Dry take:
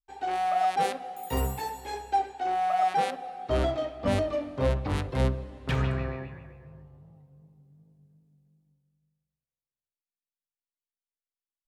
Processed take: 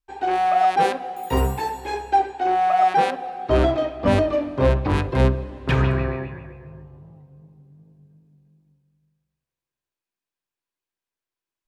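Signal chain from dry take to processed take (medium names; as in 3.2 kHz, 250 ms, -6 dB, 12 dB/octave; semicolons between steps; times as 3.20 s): treble shelf 5.6 kHz -8.5 dB; small resonant body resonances 350/1000/1600/2500 Hz, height 7 dB; trim +7.5 dB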